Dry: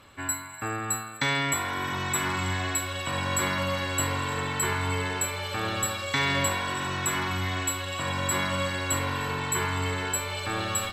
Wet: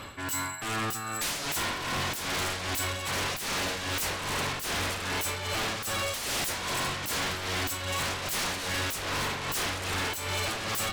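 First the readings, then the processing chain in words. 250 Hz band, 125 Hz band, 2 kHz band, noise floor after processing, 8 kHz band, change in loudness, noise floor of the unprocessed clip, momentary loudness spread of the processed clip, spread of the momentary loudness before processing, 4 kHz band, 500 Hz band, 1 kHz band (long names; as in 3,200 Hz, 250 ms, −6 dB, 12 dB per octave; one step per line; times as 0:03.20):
−5.0 dB, −6.0 dB, −2.5 dB, −36 dBFS, −3.0 dB, −2.0 dB, −39 dBFS, 1 LU, 4 LU, +1.0 dB, −3.0 dB, −3.5 dB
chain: sine wavefolder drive 18 dB, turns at −12.5 dBFS
amplitude tremolo 2.5 Hz, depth 69%
soft clipping −19 dBFS, distortion −13 dB
level −9 dB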